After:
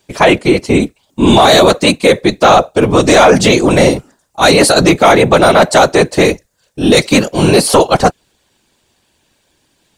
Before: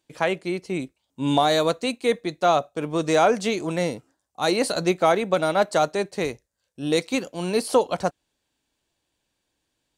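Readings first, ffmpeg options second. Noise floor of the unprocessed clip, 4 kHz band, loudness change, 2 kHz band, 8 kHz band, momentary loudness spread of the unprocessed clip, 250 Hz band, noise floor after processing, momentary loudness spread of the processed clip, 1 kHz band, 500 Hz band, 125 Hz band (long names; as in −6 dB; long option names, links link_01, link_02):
−78 dBFS, +16.0 dB, +14.0 dB, +16.0 dB, +17.0 dB, 10 LU, +15.0 dB, −60 dBFS, 7 LU, +13.0 dB, +13.0 dB, +16.5 dB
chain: -af "afftfilt=real='hypot(re,im)*cos(2*PI*random(0))':imag='hypot(re,im)*sin(2*PI*random(1))':win_size=512:overlap=0.75,apsyclip=25.5dB,volume=-1.5dB"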